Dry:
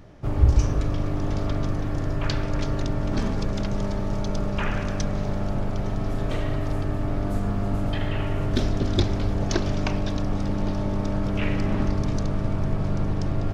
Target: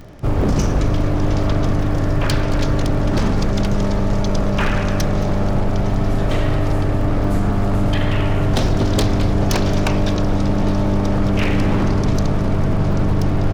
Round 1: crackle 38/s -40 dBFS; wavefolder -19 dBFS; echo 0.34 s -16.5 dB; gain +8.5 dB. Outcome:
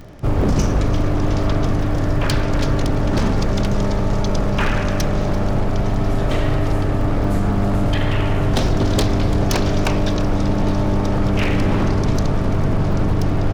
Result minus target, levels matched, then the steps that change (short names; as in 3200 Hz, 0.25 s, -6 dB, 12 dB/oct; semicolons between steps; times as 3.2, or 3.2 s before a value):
echo 0.118 s late
change: echo 0.222 s -16.5 dB